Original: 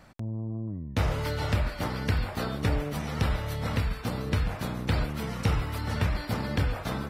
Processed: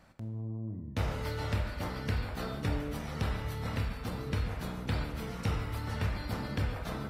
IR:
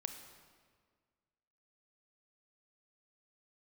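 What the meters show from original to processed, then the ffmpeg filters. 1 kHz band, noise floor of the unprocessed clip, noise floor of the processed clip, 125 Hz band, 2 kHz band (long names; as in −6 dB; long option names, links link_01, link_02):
−5.5 dB, −39 dBFS, −42 dBFS, −5.5 dB, −5.5 dB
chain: -filter_complex "[1:a]atrim=start_sample=2205,asetrate=70560,aresample=44100[link_01];[0:a][link_01]afir=irnorm=-1:irlink=0"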